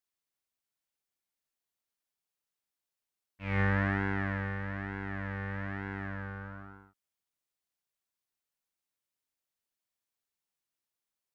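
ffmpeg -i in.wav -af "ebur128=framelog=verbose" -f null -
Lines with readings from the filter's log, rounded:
Integrated loudness:
  I:         -34.3 LUFS
  Threshold: -44.9 LUFS
Loudness range:
  LRA:        13.5 LU
  Threshold: -57.1 LUFS
  LRA low:   -47.5 LUFS
  LRA high:  -34.0 LUFS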